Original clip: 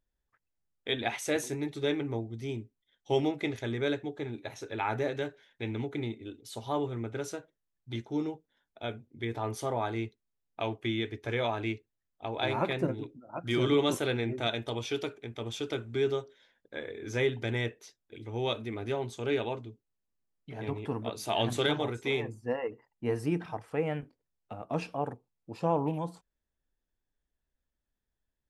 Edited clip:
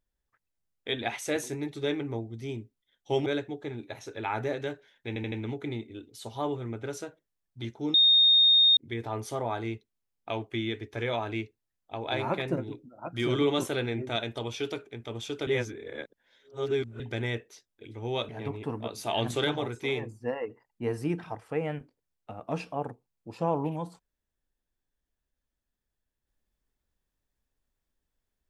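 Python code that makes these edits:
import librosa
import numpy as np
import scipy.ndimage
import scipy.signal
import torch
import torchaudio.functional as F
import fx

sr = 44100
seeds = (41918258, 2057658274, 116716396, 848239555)

y = fx.edit(x, sr, fx.cut(start_s=3.26, length_s=0.55),
    fx.stutter(start_s=5.63, slice_s=0.08, count=4),
    fx.bleep(start_s=8.25, length_s=0.83, hz=3690.0, db=-16.5),
    fx.reverse_span(start_s=15.78, length_s=1.53),
    fx.cut(start_s=18.6, length_s=1.91), tone=tone)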